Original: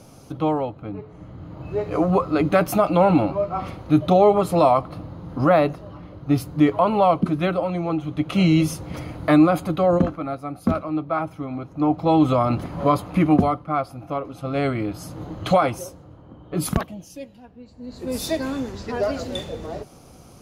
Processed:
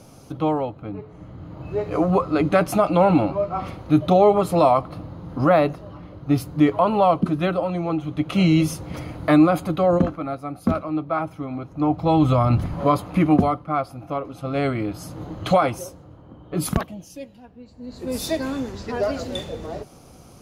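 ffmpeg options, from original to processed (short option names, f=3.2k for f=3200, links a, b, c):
-filter_complex "[0:a]asettb=1/sr,asplit=3[a][b][c];[a]atrim=end=2.224[d];[b]atrim=start=2.22:end=3.64,asetpts=PTS-STARTPTS,afade=t=in:d=0.004:c=qsin,afade=t=out:st=1.416:d=0.004:c=qsin,lowpass=f=12k:w=0.5412,lowpass=f=12k:w=1.3066[e];[c]atrim=start=3.636[f];[d][e]acrossfade=d=0.004:c1=hsin:c2=qsin[g];[g][f]acrossfade=d=0.004:c1=qsin:c2=hsin,asettb=1/sr,asplit=3[h][i][j];[h]atrim=end=6.824[k];[i]atrim=start=6.82:end=7.79,asetpts=PTS-STARTPTS,afade=t=in:d=0.004:c=qsin,afade=t=out:st=0.966:d=0.004:c=qsin,bandreject=f=2.2k:w=13[l];[j]atrim=start=7.786[m];[k][l]acrossfade=d=0.004:c1=hsin:c2=qsin[n];[n][m]acrossfade=d=0.004:c1=qsin:c2=hsin,asettb=1/sr,asplit=3[o][p][q];[o]atrim=end=11.574[r];[p]atrim=start=11.57:end=12.74,asetpts=PTS-STARTPTS,afade=t=in:d=0.004:c=qsin,afade=t=out:st=1.166:d=0.004:c=qsin,asubboost=boost=9:cutoff=160[s];[q]atrim=start=12.736[t];[r][s]acrossfade=d=0.004:c1=hsin:c2=qsin[u];[u][t]acrossfade=d=0.004:c1=qsin:c2=hsin"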